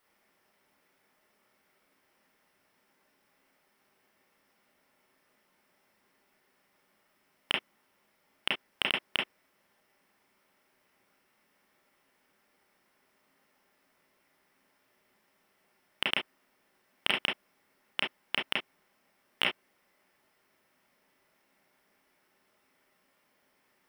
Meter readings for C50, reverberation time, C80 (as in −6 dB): 6.0 dB, non-exponential decay, 35.5 dB